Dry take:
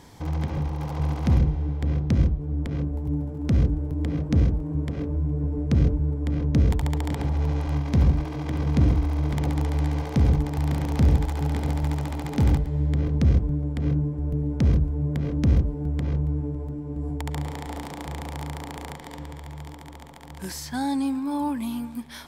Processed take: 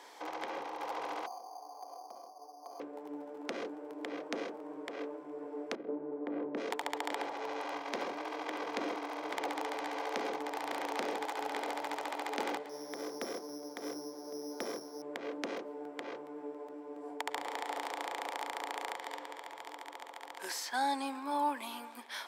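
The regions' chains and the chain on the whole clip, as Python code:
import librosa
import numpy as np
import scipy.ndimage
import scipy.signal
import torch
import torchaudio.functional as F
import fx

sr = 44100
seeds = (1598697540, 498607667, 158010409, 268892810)

y = fx.chain(x, sr, fx.formant_cascade(vowel='a'),
    fx.resample_bad(factor=8, down='filtered', up='hold'),
    fx.env_flatten(amount_pct=70), at=(1.26, 2.8))
y = fx.chain(y, sr, fx.lowpass(hz=2100.0, slope=12),
    fx.tilt_shelf(db=7.5, hz=660.0),
    fx.over_compress(threshold_db=-14.0, ratio=-0.5), at=(5.75, 6.57))
y = fx.chain(y, sr, fx.high_shelf(hz=2700.0, db=-6.0),
    fx.resample_bad(factor=8, down='filtered', up='hold'), at=(12.69, 15.02))
y = scipy.signal.sosfilt(scipy.signal.bessel(6, 610.0, 'highpass', norm='mag', fs=sr, output='sos'), y)
y = fx.high_shelf(y, sr, hz=5000.0, db=-9.0)
y = y * 10.0 ** (2.0 / 20.0)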